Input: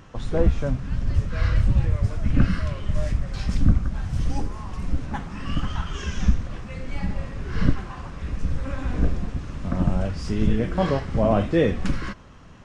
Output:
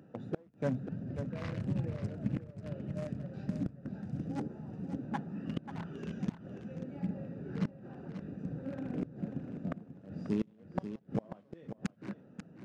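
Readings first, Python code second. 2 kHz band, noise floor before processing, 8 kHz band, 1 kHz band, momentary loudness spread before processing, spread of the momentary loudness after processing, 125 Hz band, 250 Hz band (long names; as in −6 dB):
−16.0 dB, −44 dBFS, can't be measured, −15.0 dB, 11 LU, 9 LU, −14.5 dB, −9.5 dB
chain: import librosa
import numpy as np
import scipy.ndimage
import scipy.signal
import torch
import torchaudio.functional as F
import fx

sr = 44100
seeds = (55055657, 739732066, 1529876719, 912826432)

p1 = fx.wiener(x, sr, points=41)
p2 = scipy.signal.sosfilt(scipy.signal.butter(4, 150.0, 'highpass', fs=sr, output='sos'), p1)
p3 = fx.gate_flip(p2, sr, shuts_db=-18.0, range_db=-33)
p4 = p3 + fx.echo_single(p3, sr, ms=539, db=-10.0, dry=0)
y = p4 * librosa.db_to_amplitude(-3.0)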